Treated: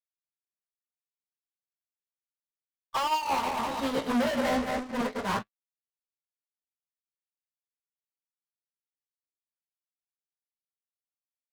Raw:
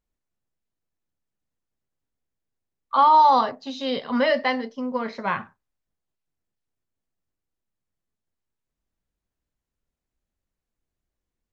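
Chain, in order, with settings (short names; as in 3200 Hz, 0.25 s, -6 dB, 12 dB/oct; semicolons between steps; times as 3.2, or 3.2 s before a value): 3.11–5.39 regenerating reverse delay 0.1 s, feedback 62%, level -4 dB; high shelf 2200 Hz -11 dB; compressor 5:1, threshold -25 dBFS, peak gain reduction 12 dB; fuzz box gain 37 dB, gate -46 dBFS; flange 0.35 Hz, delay 7.9 ms, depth 9.3 ms, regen +42%; gate -19 dBFS, range -30 dB; gain -8 dB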